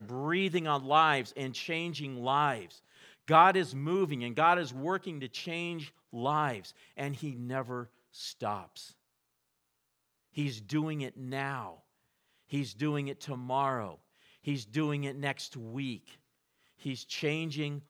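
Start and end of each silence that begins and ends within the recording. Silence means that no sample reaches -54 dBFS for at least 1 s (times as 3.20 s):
8.93–10.35 s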